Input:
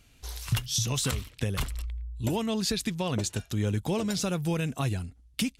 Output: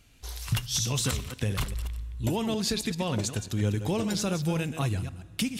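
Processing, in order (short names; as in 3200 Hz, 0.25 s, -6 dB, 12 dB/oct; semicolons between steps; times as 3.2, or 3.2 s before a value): reverse delay 0.134 s, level -9.5 dB; on a send: reverb RT60 2.7 s, pre-delay 4 ms, DRR 19 dB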